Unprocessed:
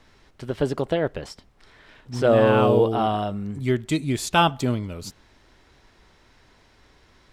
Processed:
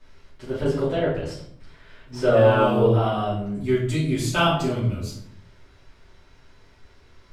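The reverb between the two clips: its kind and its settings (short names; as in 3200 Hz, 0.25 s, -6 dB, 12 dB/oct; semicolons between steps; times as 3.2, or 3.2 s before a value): shoebox room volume 100 m³, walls mixed, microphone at 2.7 m; gain -10.5 dB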